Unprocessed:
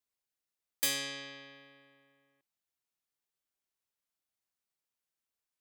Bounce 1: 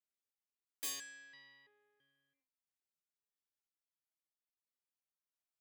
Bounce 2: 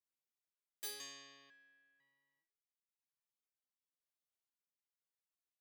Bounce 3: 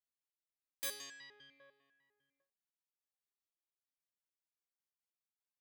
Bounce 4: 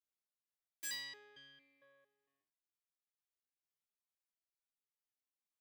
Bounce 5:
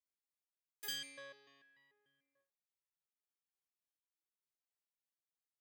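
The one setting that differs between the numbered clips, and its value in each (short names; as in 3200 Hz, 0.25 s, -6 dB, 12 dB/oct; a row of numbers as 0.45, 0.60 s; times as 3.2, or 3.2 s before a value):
stepped resonator, rate: 3, 2, 10, 4.4, 6.8 Hz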